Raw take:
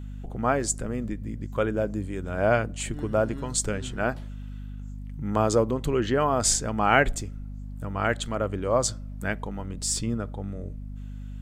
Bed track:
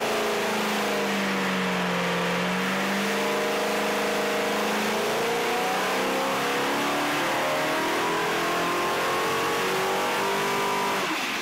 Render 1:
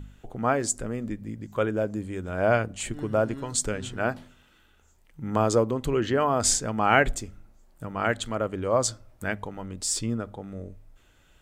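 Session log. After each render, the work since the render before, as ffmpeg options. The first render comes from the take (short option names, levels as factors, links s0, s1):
-af "bandreject=f=50:t=h:w=4,bandreject=f=100:t=h:w=4,bandreject=f=150:t=h:w=4,bandreject=f=200:t=h:w=4,bandreject=f=250:t=h:w=4"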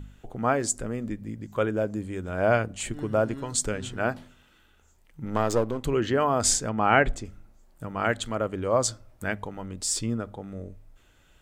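-filter_complex "[0:a]asettb=1/sr,asplit=3[s0][s1][s2];[s0]atrim=end=5.254[s3];[s1]atrim=start=5.25:end=5.84,asetpts=PTS-STARTPTS,afade=t=in:d=0.004:c=qsin,afade=t=out:st=0.586:d=0.004:c=qsin,aeval=exprs='if(lt(val(0),0),0.447*val(0),val(0))':c=same[s4];[s2]atrim=start=5.836[s5];[s3][s4]acrossfade=d=0.004:c1=hsin:c2=qsin[s6];[s6][s5]acrossfade=d=0.004:c1=qsin:c2=hsin,asettb=1/sr,asplit=3[s7][s8][s9];[s7]atrim=end=6.694[s10];[s8]atrim=start=6.69:end=7.25,asetpts=PTS-STARTPTS,afade=t=in:d=0.004:c=qsin,afade=t=out:st=0.556:d=0.004:c=qsin,aemphasis=mode=reproduction:type=50fm[s11];[s9]atrim=start=7.246[s12];[s10][s11]acrossfade=d=0.004:c1=hsin:c2=qsin[s13];[s13][s12]acrossfade=d=0.004:c1=qsin:c2=hsin"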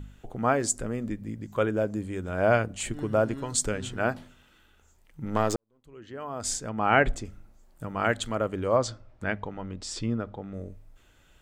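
-filter_complex "[0:a]asettb=1/sr,asplit=3[s0][s1][s2];[s0]atrim=end=8.764[s3];[s1]atrim=start=8.76:end=10.54,asetpts=PTS-STARTPTS,afade=t=in:d=0.004:c=qsin,afade=t=out:st=1.776:d=0.004:c=qsin,lowpass=4100[s4];[s2]atrim=start=10.536[s5];[s3][s4]acrossfade=d=0.004:c1=hsin:c2=qsin[s6];[s6][s5]acrossfade=d=0.004:c1=qsin:c2=hsin,asplit=2[s7][s8];[s7]atrim=end=5.56,asetpts=PTS-STARTPTS,afade=t=out:st=5.556:d=0.004:c=hsin[s9];[s8]atrim=start=5.56,asetpts=PTS-STARTPTS,afade=t=in:d=1.49:c=qua[s10];[s9][s10]concat=n=2:v=0:a=1"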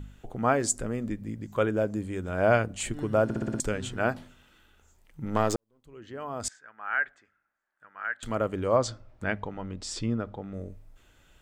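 -filter_complex "[0:a]asettb=1/sr,asplit=3[s0][s1][s2];[s0]atrim=end=6.484[s3];[s1]atrim=start=6.48:end=8.23,asetpts=PTS-STARTPTS,afade=t=in:d=0.004:c=qsin,afade=t=out:st=1.746:d=0.004:c=qsin,bandpass=f=1600:t=q:w=5.3[s4];[s2]atrim=start=8.226[s5];[s3][s4]acrossfade=d=0.004:c1=hsin:c2=qsin[s6];[s6][s5]acrossfade=d=0.004:c1=qsin:c2=hsin,asplit=7[s7][s8][s9][s10][s11][s12][s13];[s7]atrim=end=3.302[s14];[s8]atrim=start=3.238:end=3.302[s15];[s9]atrim=start=3.238:end=3.302[s16];[s10]atrim=start=3.238:end=3.302[s17];[s11]atrim=start=3.238:end=3.302[s18];[s12]atrim=start=3.238:end=3.302[s19];[s13]atrim=start=3.598[s20];[s14][s15]acrossfade=d=0.004:c1=hsin:c2=hsin[s21];[s21][s16]acrossfade=d=0.004:c1=hsin:c2=hsin[s22];[s22][s17]acrossfade=d=0.004:c1=hsin:c2=hsin[s23];[s23][s18]acrossfade=d=0.004:c1=hsin:c2=hsin[s24];[s24][s19]acrossfade=d=0.004:c1=hsin:c2=hsin[s25];[s25][s20]acrossfade=d=0.004:c1=hsin:c2=hsin"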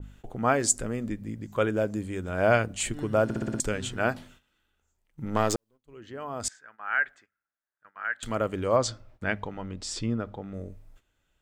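-af "agate=range=0.2:threshold=0.00224:ratio=16:detection=peak,adynamicequalizer=threshold=0.0141:dfrequency=1700:dqfactor=0.7:tfrequency=1700:tqfactor=0.7:attack=5:release=100:ratio=0.375:range=2:mode=boostabove:tftype=highshelf"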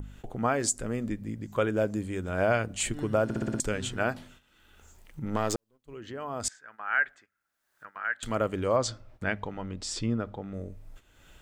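-af "alimiter=limit=0.188:level=0:latency=1:release=211,acompressor=mode=upward:threshold=0.0158:ratio=2.5"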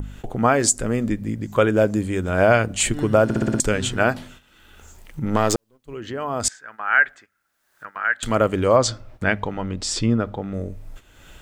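-af "volume=2.99"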